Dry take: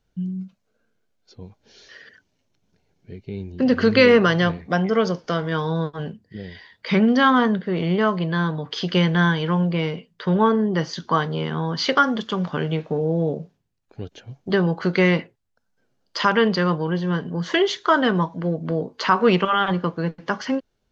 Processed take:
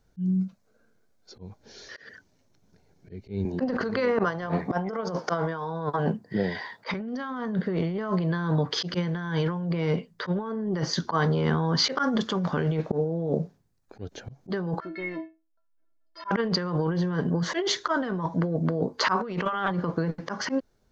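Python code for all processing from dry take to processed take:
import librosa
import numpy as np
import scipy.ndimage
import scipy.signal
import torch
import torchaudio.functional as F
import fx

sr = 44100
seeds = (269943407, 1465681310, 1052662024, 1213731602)

y = fx.chain(x, sr, fx.highpass(hz=120.0, slope=24),
    fx.peak_eq(hz=880.0, db=10.0, octaves=1.4),
    fx.over_compress(threshold_db=-16.0, ratio=-0.5), at=(3.45, 6.94))
y = fx.chain(y, sr, fx.lowpass(hz=2600.0, slope=12),
    fx.stiff_resonator(f0_hz=320.0, decay_s=0.29, stiffness=0.008), at=(14.8, 16.31))
y = fx.peak_eq(y, sr, hz=2900.0, db=-8.5, octaves=0.7)
y = fx.auto_swell(y, sr, attack_ms=148.0)
y = fx.over_compress(y, sr, threshold_db=-27.0, ratio=-1.0)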